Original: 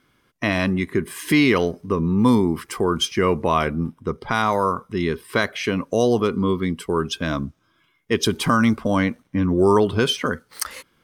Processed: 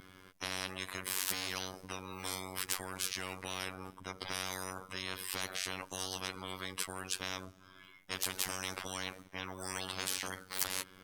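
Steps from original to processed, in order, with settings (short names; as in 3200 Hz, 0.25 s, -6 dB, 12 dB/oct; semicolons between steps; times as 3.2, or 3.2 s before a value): 9.6–10.27 de-hum 281.1 Hz, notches 30; robotiser 93.6 Hz; soft clip -2 dBFS, distortion -28 dB; spectral compressor 10:1; gain -4 dB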